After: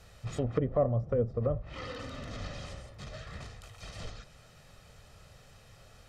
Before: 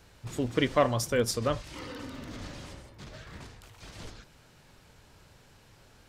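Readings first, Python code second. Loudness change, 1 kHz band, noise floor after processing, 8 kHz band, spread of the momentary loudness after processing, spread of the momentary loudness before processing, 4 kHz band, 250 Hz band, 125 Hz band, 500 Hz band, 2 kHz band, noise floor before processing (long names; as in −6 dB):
−4.0 dB, −8.0 dB, −57 dBFS, −13.5 dB, 17 LU, 21 LU, −9.0 dB, −4.5 dB, +2.5 dB, −1.5 dB, −9.5 dB, −59 dBFS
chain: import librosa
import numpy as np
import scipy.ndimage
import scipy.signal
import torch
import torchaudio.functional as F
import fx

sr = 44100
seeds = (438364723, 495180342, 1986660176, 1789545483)

y = x + 0.57 * np.pad(x, (int(1.6 * sr / 1000.0), 0))[:len(x)]
y = fx.env_lowpass_down(y, sr, base_hz=450.0, full_db=-24.0)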